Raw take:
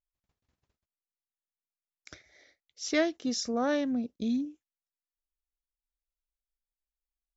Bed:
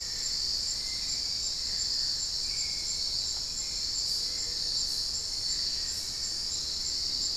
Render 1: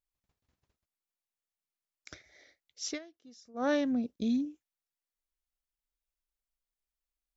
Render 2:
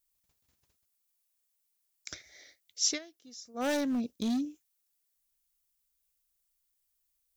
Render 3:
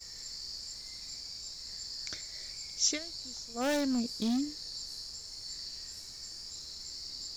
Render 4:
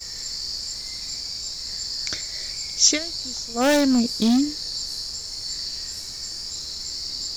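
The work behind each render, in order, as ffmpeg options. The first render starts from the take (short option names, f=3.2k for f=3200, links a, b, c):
-filter_complex "[0:a]asplit=3[a][b][c];[a]atrim=end=2.99,asetpts=PTS-STARTPTS,afade=t=out:st=2.86:d=0.13:silence=0.0668344[d];[b]atrim=start=2.99:end=3.54,asetpts=PTS-STARTPTS,volume=-23.5dB[e];[c]atrim=start=3.54,asetpts=PTS-STARTPTS,afade=t=in:d=0.13:silence=0.0668344[f];[d][e][f]concat=n=3:v=0:a=1"
-af "asoftclip=type=hard:threshold=-27dB,crystalizer=i=3.5:c=0"
-filter_complex "[1:a]volume=-11.5dB[a];[0:a][a]amix=inputs=2:normalize=0"
-af "volume=12dB"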